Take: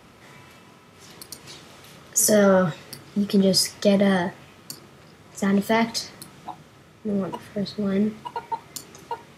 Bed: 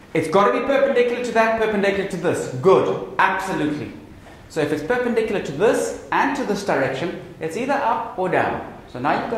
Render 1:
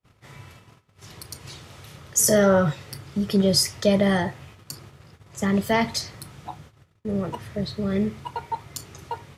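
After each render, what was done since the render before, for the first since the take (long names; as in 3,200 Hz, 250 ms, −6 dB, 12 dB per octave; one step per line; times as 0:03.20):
noise gate −48 dBFS, range −38 dB
low shelf with overshoot 150 Hz +9 dB, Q 1.5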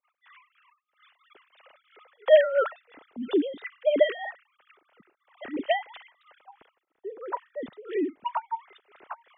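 three sine waves on the formant tracks
amplitude tremolo 3 Hz, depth 84%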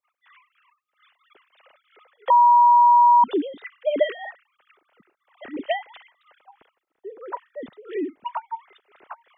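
0:02.30–0:03.24: beep over 960 Hz −10.5 dBFS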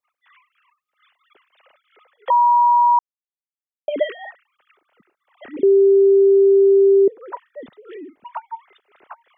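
0:02.99–0:03.88: silence
0:05.63–0:07.08: beep over 393 Hz −9 dBFS
0:07.60–0:08.36: downward compressor, threshold −33 dBFS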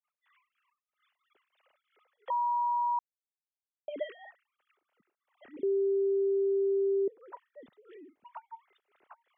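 level −15.5 dB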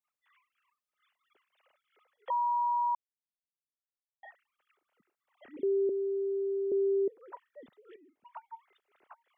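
0:02.95–0:04.23: silence
0:05.89–0:06.72: transistor ladder low-pass 450 Hz, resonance 40%
0:07.96–0:08.43: fade in, from −13.5 dB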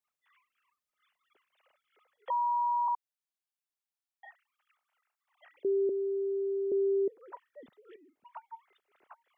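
0:02.88–0:05.65: Butterworth high-pass 710 Hz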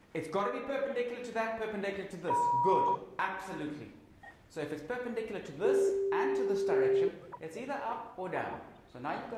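mix in bed −17 dB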